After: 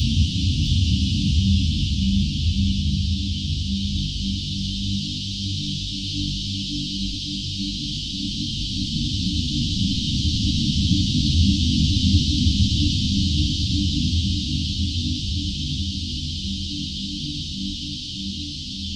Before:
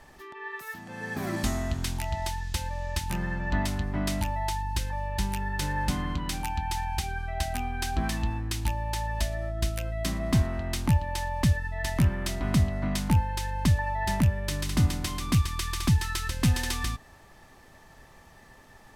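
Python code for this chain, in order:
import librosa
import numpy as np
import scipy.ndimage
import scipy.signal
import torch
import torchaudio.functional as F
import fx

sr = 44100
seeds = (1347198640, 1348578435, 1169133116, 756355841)

p1 = fx.spec_flatten(x, sr, power=0.48)
p2 = scipy.signal.sosfilt(scipy.signal.butter(4, 4600.0, 'lowpass', fs=sr, output='sos'), p1)
p3 = fx.level_steps(p2, sr, step_db=16)
p4 = p2 + (p3 * 10.0 ** (-1.5 / 20.0))
p5 = fx.paulstretch(p4, sr, seeds[0], factor=21.0, window_s=0.5, from_s=14.26)
p6 = scipy.signal.sosfilt(scipy.signal.cheby1(5, 1.0, [290.0, 3000.0], 'bandstop', fs=sr, output='sos'), p5)
p7 = p6 + fx.echo_single(p6, sr, ms=656, db=-6.0, dry=0)
p8 = fx.ensemble(p7, sr)
y = p8 * 10.0 ** (7.0 / 20.0)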